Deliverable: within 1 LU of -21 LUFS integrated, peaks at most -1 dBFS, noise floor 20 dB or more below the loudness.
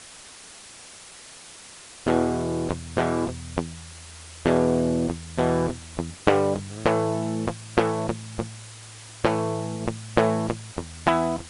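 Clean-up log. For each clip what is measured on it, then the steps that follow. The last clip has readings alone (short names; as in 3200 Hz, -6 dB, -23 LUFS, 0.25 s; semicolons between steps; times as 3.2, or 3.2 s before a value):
noise floor -45 dBFS; noise floor target -46 dBFS; loudness -25.5 LUFS; peak -1.5 dBFS; loudness target -21.0 LUFS
-> denoiser 6 dB, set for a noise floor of -45 dBFS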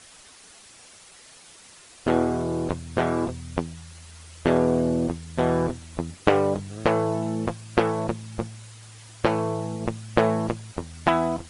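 noise floor -50 dBFS; loudness -25.5 LUFS; peak -1.5 dBFS; loudness target -21.0 LUFS
-> gain +4.5 dB; limiter -1 dBFS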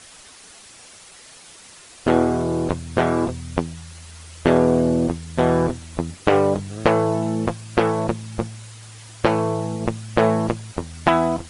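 loudness -21.5 LUFS; peak -1.0 dBFS; noise floor -45 dBFS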